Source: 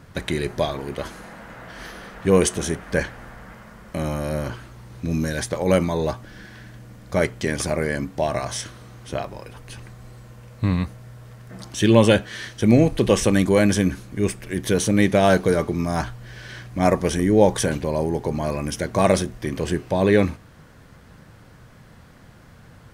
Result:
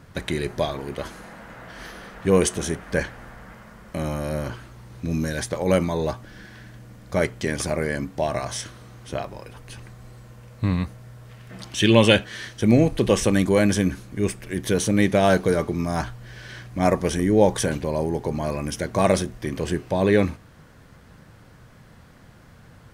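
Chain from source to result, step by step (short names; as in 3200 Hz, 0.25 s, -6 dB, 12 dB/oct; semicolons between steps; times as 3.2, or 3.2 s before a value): 11.29–12.24 bell 2800 Hz +8 dB 1.1 oct; gain -1.5 dB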